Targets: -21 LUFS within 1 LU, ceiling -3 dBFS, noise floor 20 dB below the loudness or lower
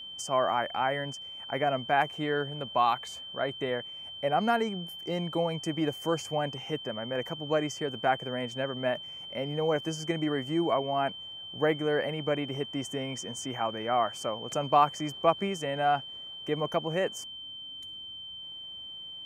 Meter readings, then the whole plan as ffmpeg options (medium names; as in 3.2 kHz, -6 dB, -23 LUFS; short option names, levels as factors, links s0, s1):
steady tone 3.1 kHz; tone level -40 dBFS; loudness -30.5 LUFS; peak level -10.0 dBFS; loudness target -21.0 LUFS
-> -af "bandreject=f=3100:w=30"
-af "volume=2.99,alimiter=limit=0.708:level=0:latency=1"